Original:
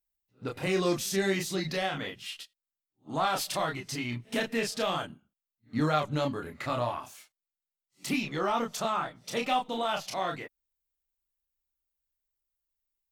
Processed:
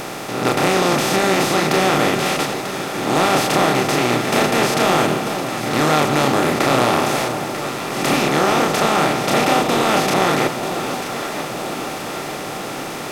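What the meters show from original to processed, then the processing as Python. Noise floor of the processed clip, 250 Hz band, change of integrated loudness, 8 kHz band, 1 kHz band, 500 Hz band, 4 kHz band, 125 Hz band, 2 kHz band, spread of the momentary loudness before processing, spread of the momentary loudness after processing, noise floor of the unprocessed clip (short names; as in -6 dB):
-28 dBFS, +14.5 dB, +13.5 dB, +15.5 dB, +15.0 dB, +15.0 dB, +14.5 dB, +13.0 dB, +16.0 dB, 12 LU, 10 LU, under -85 dBFS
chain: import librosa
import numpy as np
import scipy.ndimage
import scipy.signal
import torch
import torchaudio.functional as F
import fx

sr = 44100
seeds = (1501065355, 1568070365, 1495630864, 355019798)

y = fx.bin_compress(x, sr, power=0.2)
y = fx.echo_alternate(y, sr, ms=471, hz=960.0, feedback_pct=76, wet_db=-8.0)
y = y * librosa.db_to_amplitude(3.5)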